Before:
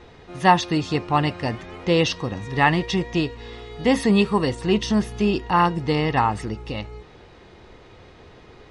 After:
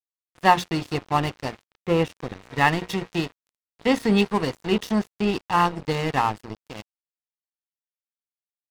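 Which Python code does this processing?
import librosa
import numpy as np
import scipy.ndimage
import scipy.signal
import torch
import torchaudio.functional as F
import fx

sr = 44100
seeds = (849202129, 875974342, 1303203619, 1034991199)

y = fx.lowpass(x, sr, hz=2100.0, slope=12, at=(1.66, 2.16))
y = fx.hum_notches(y, sr, base_hz=60, count=7)
y = np.sign(y) * np.maximum(np.abs(y) - 10.0 ** (-29.0 / 20.0), 0.0)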